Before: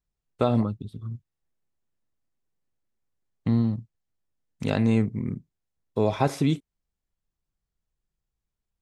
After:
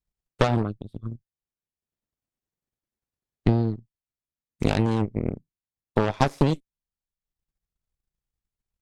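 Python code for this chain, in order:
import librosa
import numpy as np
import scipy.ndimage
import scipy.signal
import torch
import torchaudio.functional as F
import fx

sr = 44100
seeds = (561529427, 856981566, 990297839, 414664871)

y = fx.cheby_harmonics(x, sr, harmonics=(8,), levels_db=(-13,), full_scale_db=-8.0)
y = fx.transient(y, sr, attack_db=8, sustain_db=-6)
y = y * librosa.db_to_amplitude(-4.5)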